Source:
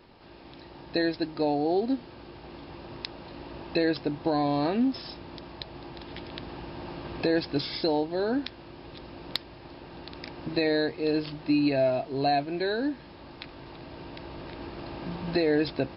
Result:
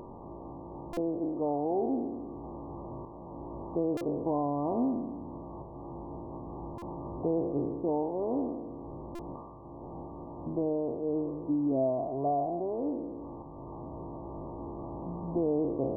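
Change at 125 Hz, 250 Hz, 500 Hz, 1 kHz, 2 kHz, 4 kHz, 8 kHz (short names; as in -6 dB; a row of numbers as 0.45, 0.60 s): -2.5 dB, -3.0 dB, -3.0 dB, -3.0 dB, under -25 dB, under -30 dB, n/a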